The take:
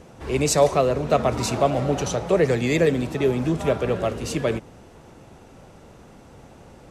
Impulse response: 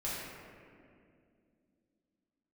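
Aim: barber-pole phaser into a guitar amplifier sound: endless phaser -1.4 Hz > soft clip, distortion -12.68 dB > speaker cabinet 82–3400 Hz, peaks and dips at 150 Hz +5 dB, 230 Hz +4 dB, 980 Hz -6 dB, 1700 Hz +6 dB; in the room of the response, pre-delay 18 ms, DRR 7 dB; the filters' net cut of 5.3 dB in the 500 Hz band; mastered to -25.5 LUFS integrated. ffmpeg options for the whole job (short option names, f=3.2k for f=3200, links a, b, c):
-filter_complex "[0:a]equalizer=f=500:t=o:g=-6.5,asplit=2[a][b];[1:a]atrim=start_sample=2205,adelay=18[c];[b][c]afir=irnorm=-1:irlink=0,volume=-11.5dB[d];[a][d]amix=inputs=2:normalize=0,asplit=2[e][f];[f]afreqshift=-1.4[g];[e][g]amix=inputs=2:normalize=1,asoftclip=threshold=-22dB,highpass=82,equalizer=f=150:t=q:w=4:g=5,equalizer=f=230:t=q:w=4:g=4,equalizer=f=980:t=q:w=4:g=-6,equalizer=f=1.7k:t=q:w=4:g=6,lowpass=f=3.4k:w=0.5412,lowpass=f=3.4k:w=1.3066,volume=3dB"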